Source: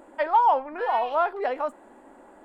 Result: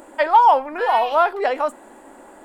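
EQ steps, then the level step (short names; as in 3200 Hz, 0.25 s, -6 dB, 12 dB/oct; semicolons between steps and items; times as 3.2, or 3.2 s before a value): high shelf 3500 Hz +10.5 dB; notches 50/100/150/200/250 Hz; +6.0 dB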